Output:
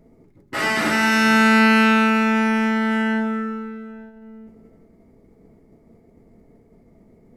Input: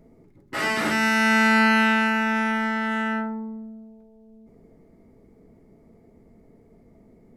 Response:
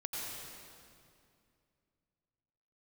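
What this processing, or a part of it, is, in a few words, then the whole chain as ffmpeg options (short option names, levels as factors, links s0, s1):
keyed gated reverb: -filter_complex "[0:a]asplit=3[s0][s1][s2];[1:a]atrim=start_sample=2205[s3];[s1][s3]afir=irnorm=-1:irlink=0[s4];[s2]apad=whole_len=324614[s5];[s4][s5]sidechaingate=range=0.0224:threshold=0.00282:ratio=16:detection=peak,volume=0.668[s6];[s0][s6]amix=inputs=2:normalize=0"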